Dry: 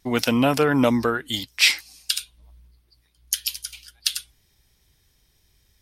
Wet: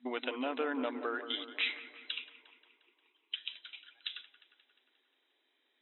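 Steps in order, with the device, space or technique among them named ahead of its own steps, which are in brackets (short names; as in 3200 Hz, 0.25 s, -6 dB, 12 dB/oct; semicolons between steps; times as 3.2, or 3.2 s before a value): jukebox (LPF 7800 Hz; resonant low shelf 170 Hz +10 dB, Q 1.5; compressor, threshold -24 dBFS, peak gain reduction 11.5 dB); FFT band-pass 240–4000 Hz; 2.12–3.36 ripple EQ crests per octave 0.71, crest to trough 17 dB; dark delay 0.177 s, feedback 60%, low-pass 1900 Hz, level -10.5 dB; gain -5.5 dB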